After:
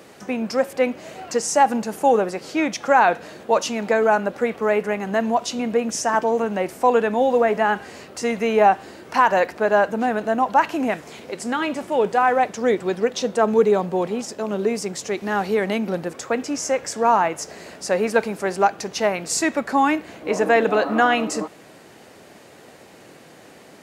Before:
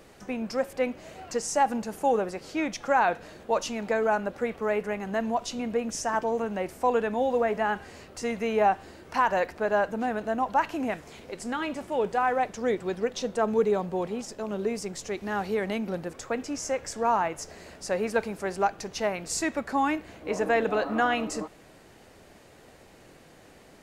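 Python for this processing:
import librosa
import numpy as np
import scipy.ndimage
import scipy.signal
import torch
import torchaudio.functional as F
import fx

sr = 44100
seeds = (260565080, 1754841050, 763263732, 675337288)

y = scipy.signal.sosfilt(scipy.signal.butter(2, 140.0, 'highpass', fs=sr, output='sos'), x)
y = y * 10.0 ** (7.5 / 20.0)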